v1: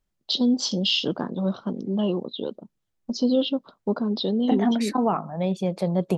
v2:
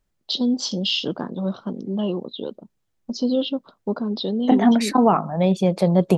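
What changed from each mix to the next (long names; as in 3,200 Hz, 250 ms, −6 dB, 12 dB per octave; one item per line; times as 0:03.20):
second voice +6.5 dB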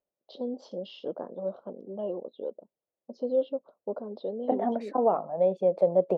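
master: add resonant band-pass 560 Hz, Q 3.3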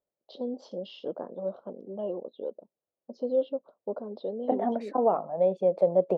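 nothing changed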